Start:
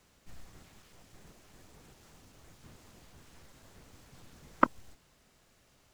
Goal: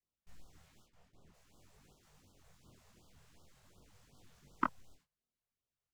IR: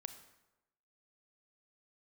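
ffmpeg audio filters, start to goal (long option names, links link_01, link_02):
-filter_complex "[0:a]asplit=3[link_01][link_02][link_03];[link_01]afade=type=out:start_time=0.85:duration=0.02[link_04];[link_02]highshelf=frequency=4200:gain=-10,afade=type=in:start_time=0.85:duration=0.02,afade=type=out:start_time=1.33:duration=0.02[link_05];[link_03]afade=type=in:start_time=1.33:duration=0.02[link_06];[link_04][link_05][link_06]amix=inputs=3:normalize=0,agate=range=-23dB:threshold=-59dB:ratio=16:detection=peak,flanger=delay=20:depth=6.7:speed=0.48,afftfilt=real='re*(1-between(b*sr/1024,250*pow(2100/250,0.5+0.5*sin(2*PI*2.7*pts/sr))/1.41,250*pow(2100/250,0.5+0.5*sin(2*PI*2.7*pts/sr))*1.41))':imag='im*(1-between(b*sr/1024,250*pow(2100/250,0.5+0.5*sin(2*PI*2.7*pts/sr))/1.41,250*pow(2100/250,0.5+0.5*sin(2*PI*2.7*pts/sr))*1.41))':win_size=1024:overlap=0.75,volume=-5dB"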